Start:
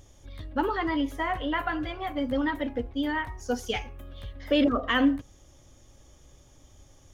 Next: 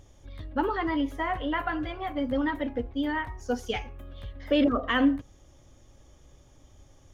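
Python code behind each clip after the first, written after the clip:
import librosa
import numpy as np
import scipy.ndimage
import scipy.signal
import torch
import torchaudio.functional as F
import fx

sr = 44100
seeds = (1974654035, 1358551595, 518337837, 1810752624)

y = fx.high_shelf(x, sr, hz=3900.0, db=-6.5)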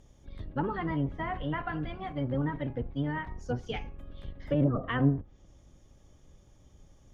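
y = fx.octave_divider(x, sr, octaves=1, level_db=3.0)
y = fx.env_lowpass_down(y, sr, base_hz=1100.0, full_db=-18.5)
y = y * 10.0 ** (-5.5 / 20.0)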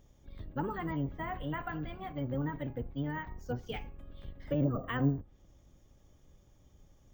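y = np.repeat(x[::2], 2)[:len(x)]
y = y * 10.0 ** (-4.0 / 20.0)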